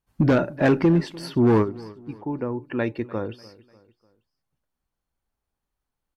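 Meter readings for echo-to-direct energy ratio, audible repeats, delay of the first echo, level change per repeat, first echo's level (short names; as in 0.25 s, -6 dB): -20.0 dB, 2, 0.297 s, -7.0 dB, -21.0 dB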